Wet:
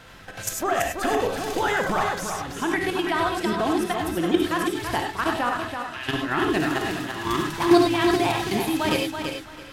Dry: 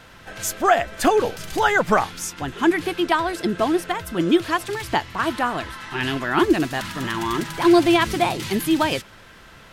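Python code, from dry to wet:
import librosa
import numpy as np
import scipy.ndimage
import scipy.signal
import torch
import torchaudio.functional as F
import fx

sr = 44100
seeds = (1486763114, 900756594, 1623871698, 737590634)

y = fx.highpass(x, sr, hz=1400.0, slope=12, at=(5.65, 6.08))
y = fx.level_steps(y, sr, step_db=12)
y = fx.echo_feedback(y, sr, ms=332, feedback_pct=22, wet_db=-6.5)
y = fx.rev_gated(y, sr, seeds[0], gate_ms=120, shape='rising', drr_db=2.0)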